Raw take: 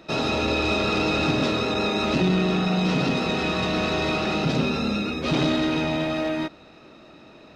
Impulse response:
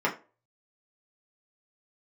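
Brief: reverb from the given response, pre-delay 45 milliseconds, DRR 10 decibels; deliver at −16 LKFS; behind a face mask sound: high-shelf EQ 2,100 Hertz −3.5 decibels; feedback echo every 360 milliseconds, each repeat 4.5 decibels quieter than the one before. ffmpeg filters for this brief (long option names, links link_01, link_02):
-filter_complex "[0:a]aecho=1:1:360|720|1080|1440|1800|2160|2520|2880|3240:0.596|0.357|0.214|0.129|0.0772|0.0463|0.0278|0.0167|0.01,asplit=2[link_01][link_02];[1:a]atrim=start_sample=2205,adelay=45[link_03];[link_02][link_03]afir=irnorm=-1:irlink=0,volume=-22.5dB[link_04];[link_01][link_04]amix=inputs=2:normalize=0,highshelf=frequency=2100:gain=-3.5,volume=5.5dB"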